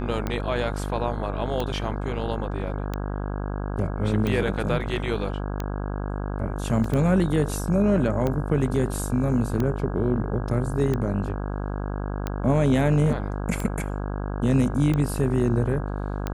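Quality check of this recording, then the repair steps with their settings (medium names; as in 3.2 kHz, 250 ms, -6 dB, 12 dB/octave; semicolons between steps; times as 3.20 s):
buzz 50 Hz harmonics 33 -29 dBFS
tick 45 rpm -14 dBFS
6.84 s: dropout 3.3 ms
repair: de-click; de-hum 50 Hz, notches 33; interpolate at 6.84 s, 3.3 ms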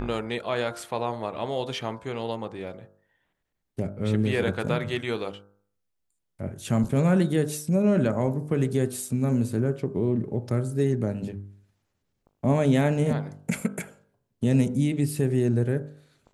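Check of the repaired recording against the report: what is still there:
nothing left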